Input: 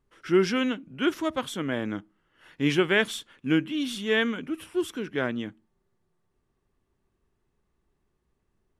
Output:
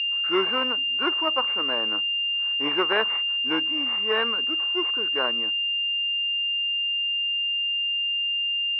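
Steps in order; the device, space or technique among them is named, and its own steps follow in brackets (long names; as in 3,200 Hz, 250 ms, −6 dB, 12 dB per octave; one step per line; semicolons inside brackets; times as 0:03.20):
toy sound module (linearly interpolated sample-rate reduction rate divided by 4×; switching amplifier with a slow clock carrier 2,800 Hz; loudspeaker in its box 680–4,900 Hz, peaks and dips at 680 Hz −4 dB, 1,100 Hz +6 dB, 2,500 Hz +3 dB)
level +7.5 dB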